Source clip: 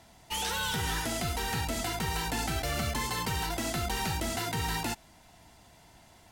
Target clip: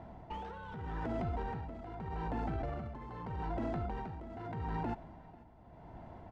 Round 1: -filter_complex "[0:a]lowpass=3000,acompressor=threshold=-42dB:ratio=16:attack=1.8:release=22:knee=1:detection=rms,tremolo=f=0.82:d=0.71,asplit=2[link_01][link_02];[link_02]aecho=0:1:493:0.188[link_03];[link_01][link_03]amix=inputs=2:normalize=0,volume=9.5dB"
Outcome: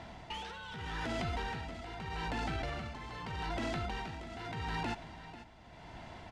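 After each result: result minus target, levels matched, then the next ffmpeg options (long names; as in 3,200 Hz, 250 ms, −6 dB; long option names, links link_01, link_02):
4,000 Hz band +16.0 dB; echo-to-direct +7.5 dB
-filter_complex "[0:a]lowpass=900,acompressor=threshold=-42dB:ratio=16:attack=1.8:release=22:knee=1:detection=rms,tremolo=f=0.82:d=0.71,asplit=2[link_01][link_02];[link_02]aecho=0:1:493:0.188[link_03];[link_01][link_03]amix=inputs=2:normalize=0,volume=9.5dB"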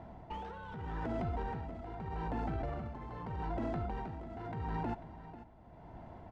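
echo-to-direct +7.5 dB
-filter_complex "[0:a]lowpass=900,acompressor=threshold=-42dB:ratio=16:attack=1.8:release=22:knee=1:detection=rms,tremolo=f=0.82:d=0.71,asplit=2[link_01][link_02];[link_02]aecho=0:1:493:0.0794[link_03];[link_01][link_03]amix=inputs=2:normalize=0,volume=9.5dB"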